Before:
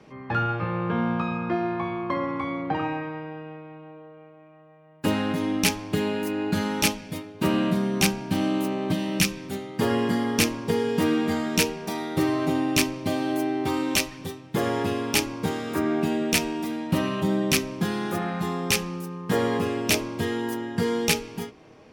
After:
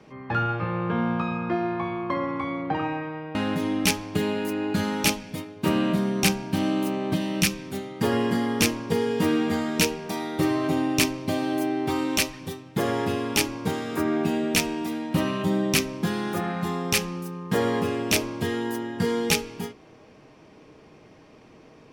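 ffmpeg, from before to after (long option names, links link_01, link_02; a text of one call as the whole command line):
ffmpeg -i in.wav -filter_complex "[0:a]asplit=2[link_01][link_02];[link_01]atrim=end=3.352[link_03];[link_02]atrim=start=5.128[link_04];[link_03][link_04]acrossfade=duration=0.004:curve1=hsin:curve2=hsin" out.wav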